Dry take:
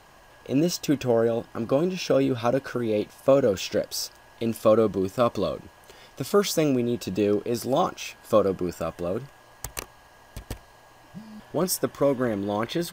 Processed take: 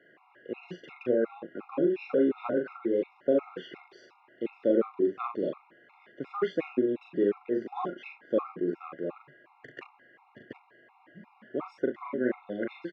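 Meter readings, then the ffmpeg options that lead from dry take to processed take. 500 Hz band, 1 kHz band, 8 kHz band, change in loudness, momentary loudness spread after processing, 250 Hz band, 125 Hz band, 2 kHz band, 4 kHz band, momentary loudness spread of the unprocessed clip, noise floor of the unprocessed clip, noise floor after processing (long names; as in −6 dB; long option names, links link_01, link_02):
−6.0 dB, −9.0 dB, below −35 dB, −5.5 dB, 18 LU, −5.0 dB, −16.5 dB, −5.5 dB, below −15 dB, 15 LU, −53 dBFS, −63 dBFS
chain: -af "highpass=frequency=180:width=0.5412,highpass=frequency=180:width=1.3066,equalizer=frequency=190:width_type=q:width=4:gain=-4,equalizer=frequency=360:width_type=q:width=4:gain=6,equalizer=frequency=670:width_type=q:width=4:gain=-8,equalizer=frequency=1100:width_type=q:width=4:gain=-4,equalizer=frequency=1900:width_type=q:width=4:gain=5,lowpass=frequency=2500:width=0.5412,lowpass=frequency=2500:width=1.3066,aecho=1:1:40|67:0.668|0.2,afftfilt=real='re*gt(sin(2*PI*2.8*pts/sr)*(1-2*mod(floor(b*sr/1024/700),2)),0)':imag='im*gt(sin(2*PI*2.8*pts/sr)*(1-2*mod(floor(b*sr/1024/700),2)),0)':win_size=1024:overlap=0.75,volume=-4.5dB"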